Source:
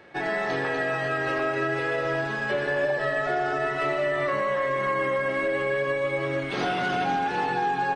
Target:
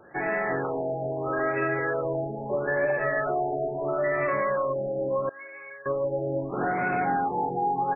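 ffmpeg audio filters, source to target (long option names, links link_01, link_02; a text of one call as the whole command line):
ffmpeg -i in.wav -filter_complex "[0:a]asettb=1/sr,asplit=3[link_01][link_02][link_03];[link_01]atrim=end=5.294[link_04];[link_02]atrim=start=5.29:end=5.86,asetpts=PTS-STARTPTS,afade=type=in:duration=0.004:curve=qsin,afade=type=out:start_time=0.566:duration=0.004:curve=qsin,aderivative[link_05];[link_03]atrim=start=5.856[link_06];[link_04][link_05]acrossfade=duration=0.004:curve1=hsin:curve2=qsin[link_07];[link_07][link_06]acrossfade=duration=0.004:curve1=qsin:curve2=hsin,afftfilt=real='re*lt(b*sr/1024,840*pow(2700/840,0.5+0.5*sin(2*PI*0.76*pts/sr)))':imag='im*lt(b*sr/1024,840*pow(2700/840,0.5+0.5*sin(2*PI*0.76*pts/sr)))':win_size=1024:overlap=0.75" out.wav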